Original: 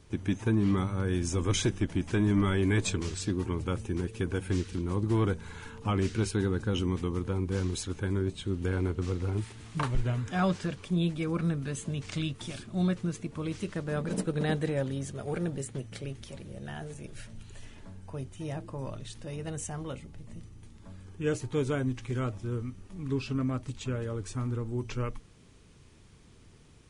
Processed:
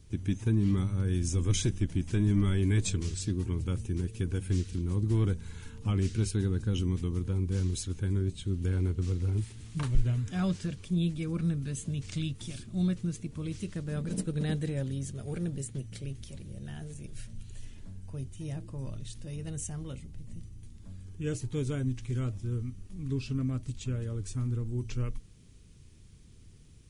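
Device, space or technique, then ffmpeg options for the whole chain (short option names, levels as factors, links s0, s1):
smiley-face EQ: -af "lowshelf=f=170:g=8.5,equalizer=f=910:t=o:w=2.1:g=-8.5,highshelf=f=5500:g=6,volume=0.668"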